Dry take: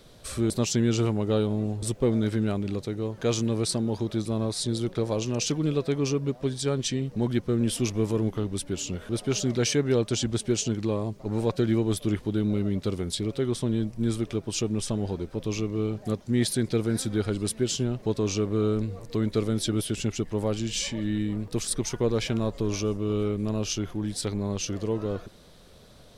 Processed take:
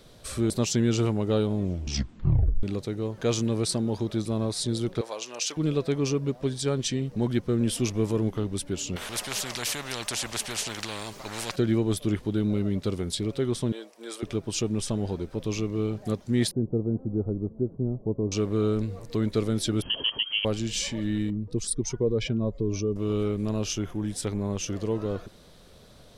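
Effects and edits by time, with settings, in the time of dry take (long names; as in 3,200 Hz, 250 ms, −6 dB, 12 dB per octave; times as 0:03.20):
0:01.55: tape stop 1.08 s
0:05.01–0:05.57: high-pass filter 760 Hz
0:08.96–0:11.56: every bin compressed towards the loudest bin 4 to 1
0:13.72–0:14.23: high-pass filter 450 Hz 24 dB per octave
0:16.51–0:18.32: Gaussian smoothing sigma 12 samples
0:19.82–0:20.45: voice inversion scrambler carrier 3,200 Hz
0:21.30–0:22.96: expanding power law on the bin magnitudes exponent 1.6
0:23.71–0:24.70: parametric band 4,300 Hz −8 dB 0.4 octaves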